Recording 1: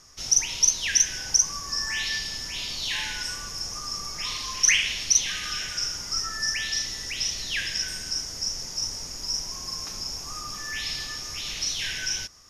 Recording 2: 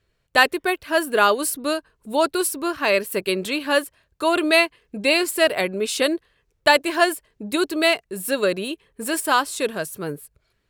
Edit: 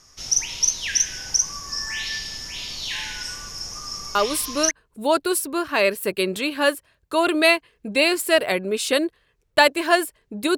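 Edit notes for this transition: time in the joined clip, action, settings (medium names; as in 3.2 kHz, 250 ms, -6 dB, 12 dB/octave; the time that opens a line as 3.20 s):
recording 1
4.43 s: go over to recording 2 from 1.52 s, crossfade 0.56 s logarithmic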